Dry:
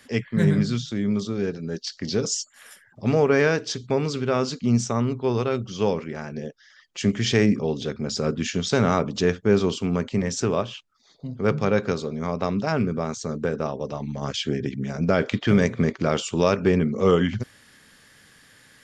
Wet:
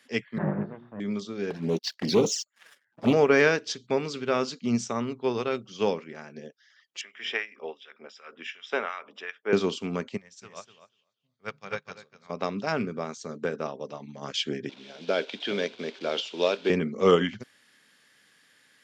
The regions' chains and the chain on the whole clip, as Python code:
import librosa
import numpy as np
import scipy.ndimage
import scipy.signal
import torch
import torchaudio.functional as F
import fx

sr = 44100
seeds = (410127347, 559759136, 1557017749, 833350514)

y = fx.chain(x, sr, fx.lower_of_two(delay_ms=1.1),
    fx.lowpass(hz=1500.0, slope=24),
    fx.hum_notches(base_hz=60, count=7), at=(0.38, 1.0))
y = fx.chain(y, sr, fx.lowpass(hz=2600.0, slope=6),
    fx.leveller(passes=3),
    fx.env_flanger(rest_ms=10.2, full_db=-17.0), at=(1.5, 3.13))
y = fx.chain(y, sr, fx.filter_lfo_highpass(shape='sine', hz=2.7, low_hz=450.0, high_hz=1700.0, q=0.73),
    fx.savgol(points=25),
    fx.low_shelf(hz=150.0, db=-4.0), at=(7.01, 9.53))
y = fx.chain(y, sr, fx.peak_eq(hz=310.0, db=-13.0, octaves=1.7),
    fx.echo_feedback(ms=244, feedback_pct=21, wet_db=-4.0),
    fx.upward_expand(threshold_db=-38.0, expansion=2.5), at=(10.17, 12.3))
y = fx.chain(y, sr, fx.delta_mod(bps=64000, step_db=-32.5),
    fx.cabinet(low_hz=350.0, low_slope=12, high_hz=5300.0, hz=(810.0, 1200.0, 1900.0, 3500.0), db=(-3, -9, -8, 6)), at=(14.69, 16.7))
y = scipy.signal.sosfilt(scipy.signal.butter(2, 200.0, 'highpass', fs=sr, output='sos'), y)
y = fx.peak_eq(y, sr, hz=2800.0, db=4.5, octaves=1.7)
y = fx.upward_expand(y, sr, threshold_db=-36.0, expansion=1.5)